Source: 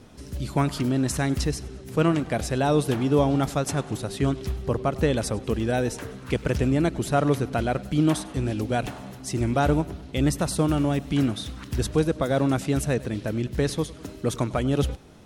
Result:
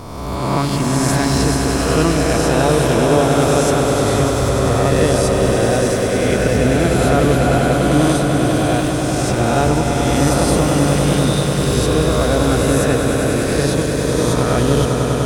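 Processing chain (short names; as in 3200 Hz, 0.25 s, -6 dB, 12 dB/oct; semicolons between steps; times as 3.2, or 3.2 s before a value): spectral swells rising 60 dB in 1.73 s; swelling echo 99 ms, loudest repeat 5, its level -8.5 dB; gain +2.5 dB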